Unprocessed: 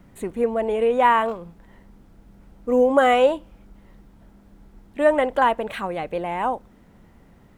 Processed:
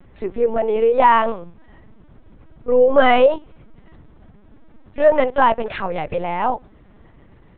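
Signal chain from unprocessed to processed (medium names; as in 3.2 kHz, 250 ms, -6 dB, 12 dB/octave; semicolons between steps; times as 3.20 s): LPC vocoder at 8 kHz pitch kept; trim +4 dB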